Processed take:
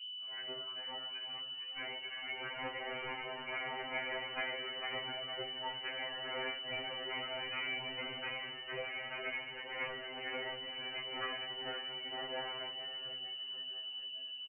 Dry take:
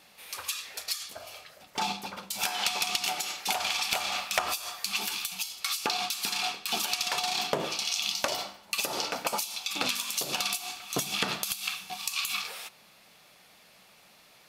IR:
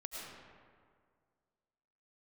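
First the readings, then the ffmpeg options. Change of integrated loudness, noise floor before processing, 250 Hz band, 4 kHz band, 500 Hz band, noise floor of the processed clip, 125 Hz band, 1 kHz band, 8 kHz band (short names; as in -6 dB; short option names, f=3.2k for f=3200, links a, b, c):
-10.0 dB, -58 dBFS, -9.0 dB, -7.5 dB, -5.0 dB, -46 dBFS, -8.5 dB, -10.5 dB, under -40 dB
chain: -filter_complex "[0:a]highpass=f=780:w=0.5412,highpass=f=780:w=1.3066,agate=range=-18dB:threshold=-46dB:ratio=16:detection=peak,bandreject=f=1.3k:w=27,flanger=delay=1.3:depth=4.2:regen=-87:speed=0.35:shape=triangular,aeval=exprs='val(0)+0.00631*(sin(2*PI*60*n/s)+sin(2*PI*2*60*n/s)/2+sin(2*PI*3*60*n/s)/3+sin(2*PI*4*60*n/s)/4+sin(2*PI*5*60*n/s)/5)':c=same,flanger=delay=15.5:depth=4.5:speed=0.16,asoftclip=type=tanh:threshold=-31dB,asplit=7[a][b][c][d][e][f][g];[b]adelay=457,afreqshift=49,volume=-5.5dB[h];[c]adelay=914,afreqshift=98,volume=-11.9dB[i];[d]adelay=1371,afreqshift=147,volume=-18.3dB[j];[e]adelay=1828,afreqshift=196,volume=-24.6dB[k];[f]adelay=2285,afreqshift=245,volume=-31dB[l];[g]adelay=2742,afreqshift=294,volume=-37.4dB[m];[a][h][i][j][k][l][m]amix=inputs=7:normalize=0,lowpass=f=2.6k:t=q:w=0.5098,lowpass=f=2.6k:t=q:w=0.6013,lowpass=f=2.6k:t=q:w=0.9,lowpass=f=2.6k:t=q:w=2.563,afreqshift=-3100,afftfilt=real='re*2.45*eq(mod(b,6),0)':imag='im*2.45*eq(mod(b,6),0)':win_size=2048:overlap=0.75,volume=5.5dB"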